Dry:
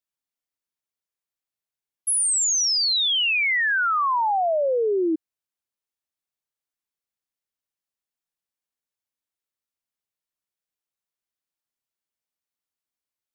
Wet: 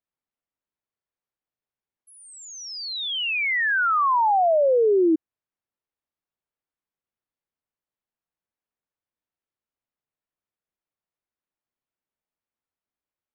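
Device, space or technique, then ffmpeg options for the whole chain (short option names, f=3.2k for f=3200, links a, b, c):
phone in a pocket: -af "lowpass=3.3k,highshelf=f=2k:g=-10,volume=4dB"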